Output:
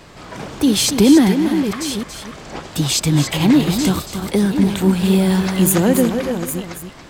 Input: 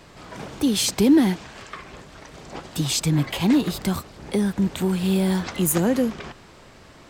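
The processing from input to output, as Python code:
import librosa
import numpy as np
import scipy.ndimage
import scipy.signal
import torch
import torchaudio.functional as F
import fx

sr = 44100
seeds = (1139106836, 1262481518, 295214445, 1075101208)

y = fx.reverse_delay(x, sr, ms=678, wet_db=-9)
y = y + 10.0 ** (-8.5 / 20.0) * np.pad(y, (int(281 * sr / 1000.0), 0))[:len(y)]
y = y * librosa.db_to_amplitude(5.5)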